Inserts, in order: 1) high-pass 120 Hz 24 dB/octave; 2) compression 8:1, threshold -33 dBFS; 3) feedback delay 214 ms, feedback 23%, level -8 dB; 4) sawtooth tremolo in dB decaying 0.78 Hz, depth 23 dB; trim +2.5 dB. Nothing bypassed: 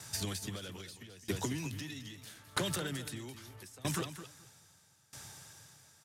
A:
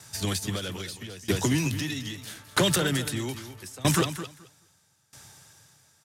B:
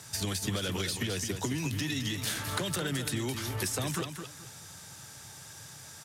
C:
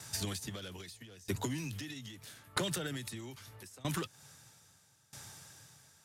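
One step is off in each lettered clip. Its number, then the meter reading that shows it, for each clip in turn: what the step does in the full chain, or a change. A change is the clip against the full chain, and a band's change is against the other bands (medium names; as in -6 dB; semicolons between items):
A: 2, mean gain reduction 7.0 dB; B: 4, momentary loudness spread change -3 LU; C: 3, momentary loudness spread change +2 LU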